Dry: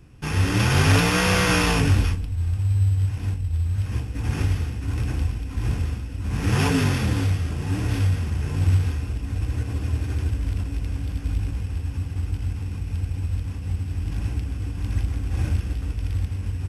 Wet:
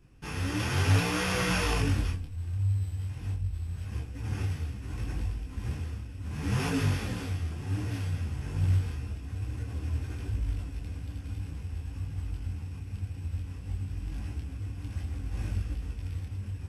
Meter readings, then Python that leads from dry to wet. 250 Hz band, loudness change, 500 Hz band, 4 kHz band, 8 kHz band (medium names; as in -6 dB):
-8.5 dB, -8.5 dB, -8.5 dB, -8.5 dB, -8.5 dB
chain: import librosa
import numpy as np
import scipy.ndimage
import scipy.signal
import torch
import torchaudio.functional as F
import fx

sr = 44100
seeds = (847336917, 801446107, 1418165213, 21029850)

y = fx.detune_double(x, sr, cents=20)
y = y * 10.0 ** (-5.0 / 20.0)